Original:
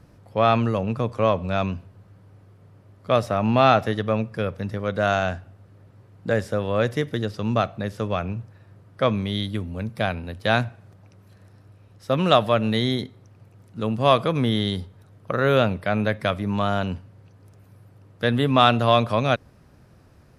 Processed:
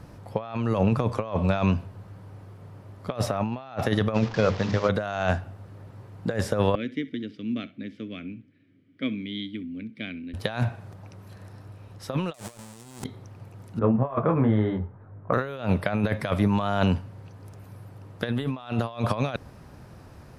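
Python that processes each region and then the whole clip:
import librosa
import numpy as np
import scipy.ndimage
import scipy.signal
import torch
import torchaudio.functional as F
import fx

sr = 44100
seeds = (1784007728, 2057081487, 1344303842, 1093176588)

y = fx.chain(x, sr, fx.delta_mod(bps=32000, step_db=-37.0),
    fx.hum_notches(base_hz=50, count=10), at=(4.14, 4.89))
y = fx.chain(y, sr, fx.vowel_filter(vowel='i'),
    fx.high_shelf(hz=9100.0, db=-4.5),
    fx.room_flutter(wall_m=10.9, rt60_s=0.2), at=(6.75, 10.34))
y = fx.chain(y, sr, fx.halfwave_hold(),
    fx.peak_eq(hz=8400.0, db=14.5, octaves=1.1),
    fx.env_flatten(amount_pct=50), at=(12.34, 13.04))
y = fx.chain(y, sr, fx.lowpass(hz=1700.0, slope=24),
    fx.detune_double(cents=25), at=(13.79, 15.33))
y = fx.peak_eq(y, sr, hz=890.0, db=4.0, octaves=0.57)
y = fx.over_compress(y, sr, threshold_db=-25.0, ratio=-0.5)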